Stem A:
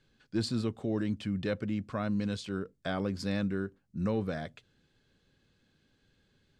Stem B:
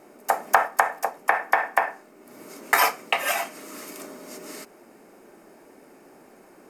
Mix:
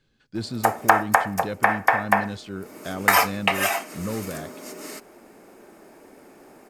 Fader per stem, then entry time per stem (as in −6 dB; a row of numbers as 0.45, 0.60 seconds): +1.0, +2.0 decibels; 0.00, 0.35 seconds